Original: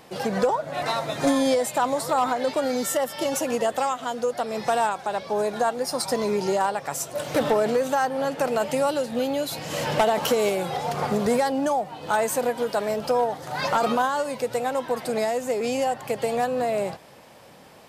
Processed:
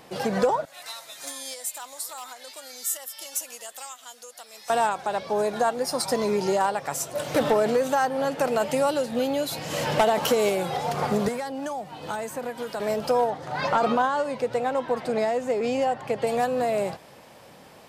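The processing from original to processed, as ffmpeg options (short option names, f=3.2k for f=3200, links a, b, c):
-filter_complex "[0:a]asettb=1/sr,asplit=3[a][b][c];[a]atrim=end=0.654[d];[b]atrim=start=0.65:end=4.7,asetpts=PTS-STARTPTS,afade=t=in:d=0.004:c=qsin,afade=t=out:st=4.046:d=0.004:c=qsin,aderivative[e];[c]atrim=start=4.696[f];[d][e]acrossfade=d=0.004:c1=hsin:c2=qsin[g];[g][f]acrossfade=d=0.004:c1=qsin:c2=hsin,asettb=1/sr,asplit=3[h][i][j];[h]atrim=end=11.284[k];[i]atrim=start=11.28:end=12.8,asetpts=PTS-STARTPTS,afade=t=in:d=0.004:c=qsin,afade=t=out:st=1.516:d=0.004:c=qsin,acrossover=split=340|970|2200[l][m][n][o];[l]acompressor=threshold=-39dB:ratio=3[p];[m]acompressor=threshold=-37dB:ratio=3[q];[n]acompressor=threshold=-40dB:ratio=3[r];[o]acompressor=threshold=-44dB:ratio=3[s];[p][q][r][s]amix=inputs=4:normalize=0[t];[j]atrim=start=12.796[u];[k][t]acrossfade=d=0.004:c1=hsin:c2=qsin[v];[v][u]acrossfade=d=0.004:c1=qsin:c2=hsin,asettb=1/sr,asplit=3[w][x][y];[w]atrim=end=13.304[z];[x]atrim=start=13.3:end=16.27,asetpts=PTS-STARTPTS,afade=t=in:d=0.004:c=qsin,afade=t=out:st=2.966:d=0.004:c=qsin,aemphasis=mode=reproduction:type=50fm[aa];[y]atrim=start=16.266[ab];[z][aa]acrossfade=d=0.004:c1=hsin:c2=qsin[ac];[ac][ab]acrossfade=d=0.004:c1=qsin:c2=hsin"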